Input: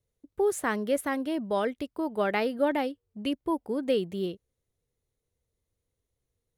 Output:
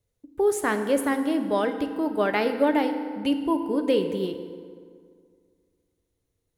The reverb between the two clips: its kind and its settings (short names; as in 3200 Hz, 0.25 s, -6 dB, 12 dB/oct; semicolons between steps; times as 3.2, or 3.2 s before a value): FDN reverb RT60 2.1 s, low-frequency decay 1.05×, high-frequency decay 0.6×, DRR 6.5 dB; gain +3 dB